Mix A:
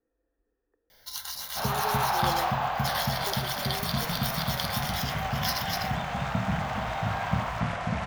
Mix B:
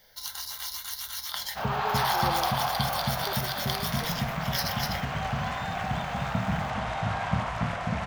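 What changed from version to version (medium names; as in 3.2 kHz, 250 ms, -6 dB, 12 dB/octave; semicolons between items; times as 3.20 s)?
first sound: entry -0.90 s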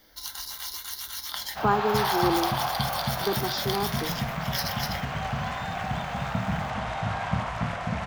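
speech: remove cascade formant filter e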